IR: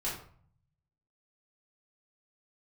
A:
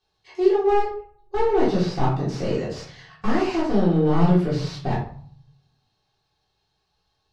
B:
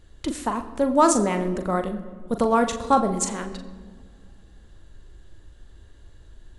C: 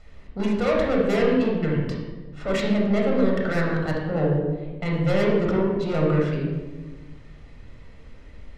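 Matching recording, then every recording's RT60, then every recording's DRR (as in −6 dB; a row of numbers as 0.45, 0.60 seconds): A; 0.50 s, non-exponential decay, 1.3 s; −8.0, 6.5, −2.0 decibels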